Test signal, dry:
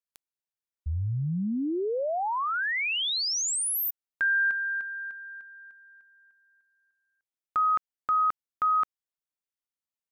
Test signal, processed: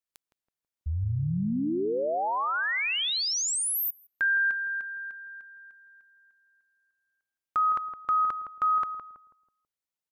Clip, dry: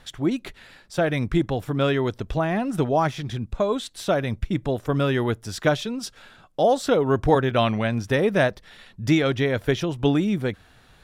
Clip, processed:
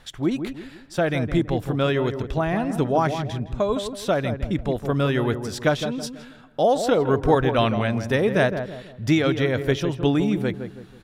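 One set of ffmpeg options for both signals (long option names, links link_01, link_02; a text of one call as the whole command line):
ffmpeg -i in.wav -filter_complex "[0:a]asplit=2[link_01][link_02];[link_02]adelay=163,lowpass=frequency=1100:poles=1,volume=-7.5dB,asplit=2[link_03][link_04];[link_04]adelay=163,lowpass=frequency=1100:poles=1,volume=0.41,asplit=2[link_05][link_06];[link_06]adelay=163,lowpass=frequency=1100:poles=1,volume=0.41,asplit=2[link_07][link_08];[link_08]adelay=163,lowpass=frequency=1100:poles=1,volume=0.41,asplit=2[link_09][link_10];[link_10]adelay=163,lowpass=frequency=1100:poles=1,volume=0.41[link_11];[link_01][link_03][link_05][link_07][link_09][link_11]amix=inputs=6:normalize=0" out.wav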